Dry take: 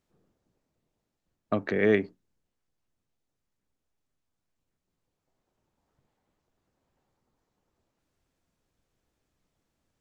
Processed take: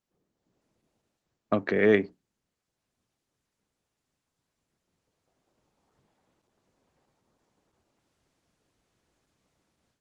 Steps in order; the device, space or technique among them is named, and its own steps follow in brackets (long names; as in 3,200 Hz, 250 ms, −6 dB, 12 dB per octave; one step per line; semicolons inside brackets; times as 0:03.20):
video call (high-pass filter 110 Hz 6 dB per octave; automatic gain control gain up to 15 dB; level −8 dB; Opus 16 kbit/s 48,000 Hz)